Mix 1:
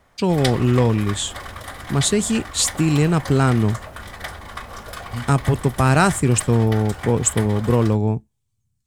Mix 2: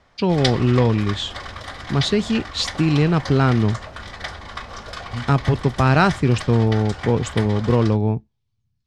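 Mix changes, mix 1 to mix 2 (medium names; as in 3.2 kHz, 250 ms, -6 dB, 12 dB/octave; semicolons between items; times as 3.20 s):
speech: add peaking EQ 7.9 kHz -13.5 dB 0.95 oct; master: add resonant low-pass 5.1 kHz, resonance Q 1.6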